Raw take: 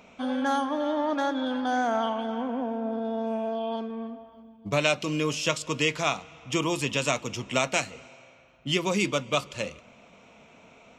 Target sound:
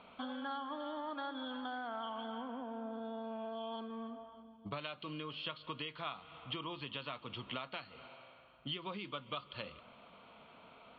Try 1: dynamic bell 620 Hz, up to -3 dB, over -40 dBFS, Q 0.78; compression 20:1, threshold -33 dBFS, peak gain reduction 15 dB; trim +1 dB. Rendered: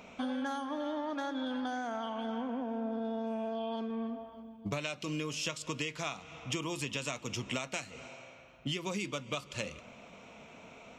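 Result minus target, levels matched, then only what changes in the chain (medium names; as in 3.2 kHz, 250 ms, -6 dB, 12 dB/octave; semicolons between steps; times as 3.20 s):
4 kHz band -3.0 dB
add after compression: rippled Chebyshev low-pass 4.5 kHz, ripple 9 dB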